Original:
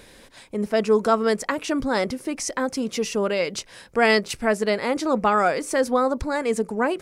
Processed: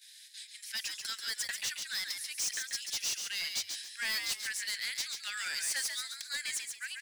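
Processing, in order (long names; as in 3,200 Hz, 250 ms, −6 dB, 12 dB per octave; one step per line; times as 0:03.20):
Butterworth high-pass 1,600 Hz 72 dB per octave
noise gate −55 dBFS, range −10 dB
high shelf with overshoot 3,000 Hz +7.5 dB, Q 1.5
automatic gain control gain up to 8 dB
soft clipping −21.5 dBFS, distortion −6 dB
echo with shifted repeats 138 ms, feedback 31%, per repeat +93 Hz, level −5.5 dB
level −9 dB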